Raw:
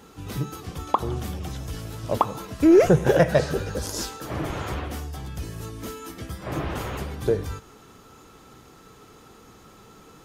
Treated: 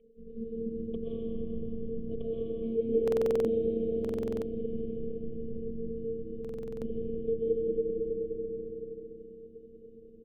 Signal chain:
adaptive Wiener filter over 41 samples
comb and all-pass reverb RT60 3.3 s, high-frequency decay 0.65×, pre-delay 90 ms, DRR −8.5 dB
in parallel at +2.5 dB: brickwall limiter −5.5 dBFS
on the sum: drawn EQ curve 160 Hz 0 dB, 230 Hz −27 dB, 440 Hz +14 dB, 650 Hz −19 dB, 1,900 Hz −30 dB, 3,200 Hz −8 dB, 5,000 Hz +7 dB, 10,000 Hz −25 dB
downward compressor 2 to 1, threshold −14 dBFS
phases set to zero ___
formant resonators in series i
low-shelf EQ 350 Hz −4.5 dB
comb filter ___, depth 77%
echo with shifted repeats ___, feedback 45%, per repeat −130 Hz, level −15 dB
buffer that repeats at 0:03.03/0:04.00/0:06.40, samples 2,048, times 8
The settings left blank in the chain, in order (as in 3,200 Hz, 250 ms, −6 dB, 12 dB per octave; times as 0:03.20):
227 Hz, 1.6 ms, 193 ms